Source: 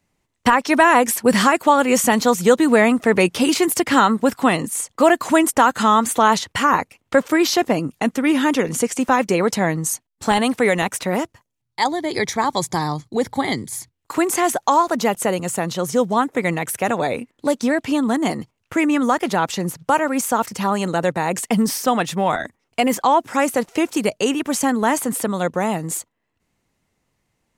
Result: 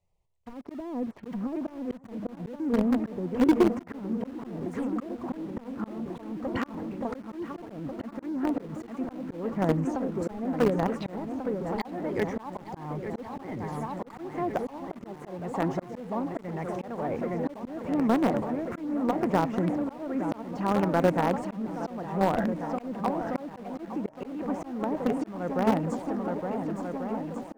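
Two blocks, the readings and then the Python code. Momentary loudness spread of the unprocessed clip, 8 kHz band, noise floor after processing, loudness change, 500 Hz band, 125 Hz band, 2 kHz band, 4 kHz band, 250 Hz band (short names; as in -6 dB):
8 LU, under -25 dB, -48 dBFS, -11.5 dB, -11.0 dB, -5.5 dB, -19.0 dB, -22.0 dB, -8.5 dB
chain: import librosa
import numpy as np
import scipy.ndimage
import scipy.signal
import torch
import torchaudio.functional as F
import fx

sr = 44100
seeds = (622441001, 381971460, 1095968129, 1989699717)

p1 = fx.env_lowpass_down(x, sr, base_hz=300.0, full_db=-11.0)
p2 = fx.low_shelf(p1, sr, hz=63.0, db=11.0)
p3 = fx.env_phaser(p2, sr, low_hz=260.0, high_hz=4000.0, full_db=-21.0)
p4 = fx.echo_swing(p3, sr, ms=1441, ratio=1.5, feedback_pct=55, wet_db=-8)
p5 = fx.auto_swell(p4, sr, attack_ms=428.0)
p6 = fx.quant_companded(p5, sr, bits=2)
p7 = p5 + (p6 * 10.0 ** (-12.0 / 20.0))
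p8 = fx.high_shelf(p7, sr, hz=3400.0, db=-11.0)
y = p8 * 10.0 ** (-6.5 / 20.0)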